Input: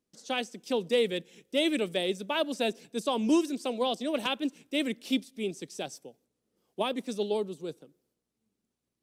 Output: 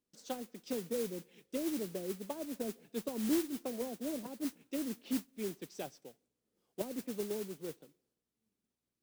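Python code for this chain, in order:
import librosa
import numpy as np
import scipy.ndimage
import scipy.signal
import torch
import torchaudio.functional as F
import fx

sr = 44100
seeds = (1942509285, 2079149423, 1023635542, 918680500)

y = fx.env_lowpass_down(x, sr, base_hz=370.0, full_db=-26.5)
y = fx.mod_noise(y, sr, seeds[0], snr_db=11)
y = y * 10.0 ** (-5.5 / 20.0)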